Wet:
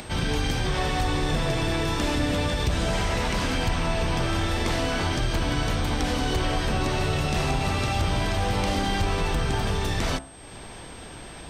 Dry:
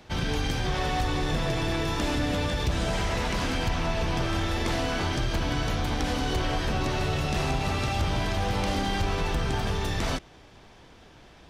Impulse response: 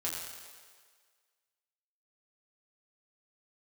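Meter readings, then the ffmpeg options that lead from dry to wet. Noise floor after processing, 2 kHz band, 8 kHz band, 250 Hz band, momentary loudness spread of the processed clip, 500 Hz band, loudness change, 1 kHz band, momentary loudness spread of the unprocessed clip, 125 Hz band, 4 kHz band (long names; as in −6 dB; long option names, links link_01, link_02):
−41 dBFS, +2.5 dB, +3.5 dB, +2.0 dB, 3 LU, +2.0 dB, +2.5 dB, +2.0 dB, 1 LU, +2.5 dB, +2.5 dB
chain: -af "acompressor=mode=upward:threshold=-33dB:ratio=2.5,bandreject=frequency=66.96:width_type=h:width=4,bandreject=frequency=133.92:width_type=h:width=4,bandreject=frequency=200.88:width_type=h:width=4,bandreject=frequency=267.84:width_type=h:width=4,bandreject=frequency=334.8:width_type=h:width=4,bandreject=frequency=401.76:width_type=h:width=4,bandreject=frequency=468.72:width_type=h:width=4,bandreject=frequency=535.68:width_type=h:width=4,bandreject=frequency=602.64:width_type=h:width=4,bandreject=frequency=669.6:width_type=h:width=4,bandreject=frequency=736.56:width_type=h:width=4,bandreject=frequency=803.52:width_type=h:width=4,bandreject=frequency=870.48:width_type=h:width=4,bandreject=frequency=937.44:width_type=h:width=4,bandreject=frequency=1004.4:width_type=h:width=4,bandreject=frequency=1071.36:width_type=h:width=4,bandreject=frequency=1138.32:width_type=h:width=4,bandreject=frequency=1205.28:width_type=h:width=4,bandreject=frequency=1272.24:width_type=h:width=4,bandreject=frequency=1339.2:width_type=h:width=4,bandreject=frequency=1406.16:width_type=h:width=4,bandreject=frequency=1473.12:width_type=h:width=4,bandreject=frequency=1540.08:width_type=h:width=4,bandreject=frequency=1607.04:width_type=h:width=4,bandreject=frequency=1674:width_type=h:width=4,bandreject=frequency=1740.96:width_type=h:width=4,bandreject=frequency=1807.92:width_type=h:width=4,aeval=exprs='val(0)+0.00282*sin(2*PI*8300*n/s)':channel_layout=same,volume=2.5dB"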